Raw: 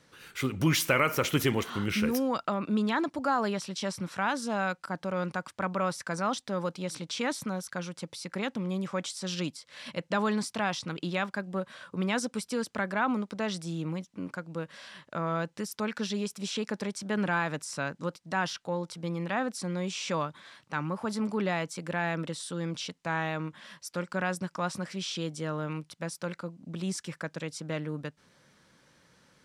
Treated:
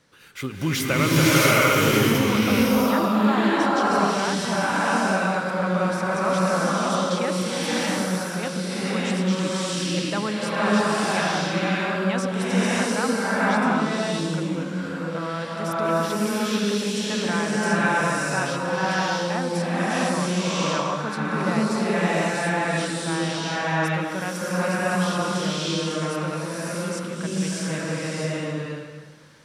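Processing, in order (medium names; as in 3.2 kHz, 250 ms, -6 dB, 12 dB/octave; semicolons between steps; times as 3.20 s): swelling reverb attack 660 ms, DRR -9 dB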